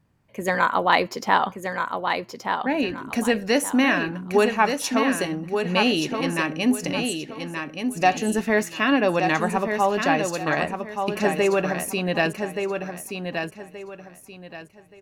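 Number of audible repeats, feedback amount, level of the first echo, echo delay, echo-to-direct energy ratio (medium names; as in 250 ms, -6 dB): 3, 28%, -6.0 dB, 1176 ms, -5.5 dB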